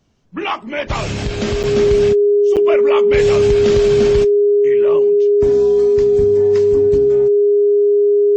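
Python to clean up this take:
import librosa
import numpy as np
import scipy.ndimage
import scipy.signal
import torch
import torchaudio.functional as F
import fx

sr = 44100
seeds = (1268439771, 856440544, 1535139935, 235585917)

y = fx.notch(x, sr, hz=410.0, q=30.0)
y = fx.fix_interpolate(y, sr, at_s=(1.63, 2.56), length_ms=7.7)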